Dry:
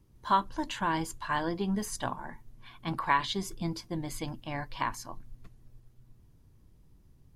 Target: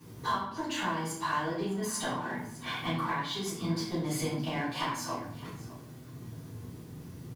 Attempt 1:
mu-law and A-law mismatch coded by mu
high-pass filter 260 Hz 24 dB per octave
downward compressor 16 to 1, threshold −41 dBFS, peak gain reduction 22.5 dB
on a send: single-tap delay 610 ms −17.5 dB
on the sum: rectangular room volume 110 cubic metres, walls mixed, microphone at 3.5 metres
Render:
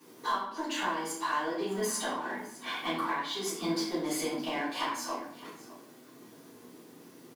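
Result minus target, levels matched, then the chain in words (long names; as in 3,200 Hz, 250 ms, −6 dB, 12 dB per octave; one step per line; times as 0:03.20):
125 Hz band −13.0 dB
mu-law and A-law mismatch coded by mu
high-pass filter 110 Hz 24 dB per octave
downward compressor 16 to 1, threshold −41 dBFS, peak gain reduction 22.5 dB
on a send: single-tap delay 610 ms −17.5 dB
on the sum: rectangular room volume 110 cubic metres, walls mixed, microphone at 3.5 metres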